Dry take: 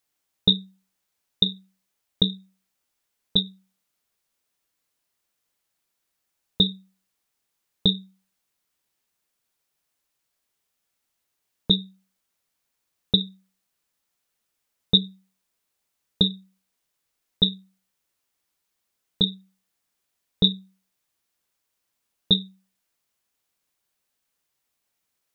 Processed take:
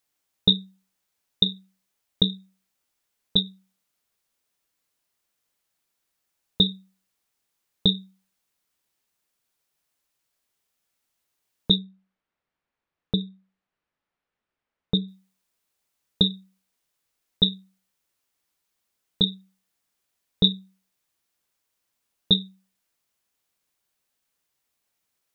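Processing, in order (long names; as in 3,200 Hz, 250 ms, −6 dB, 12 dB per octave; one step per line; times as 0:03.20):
0:11.78–0:15.08: low-pass filter 2,200 Hz 12 dB per octave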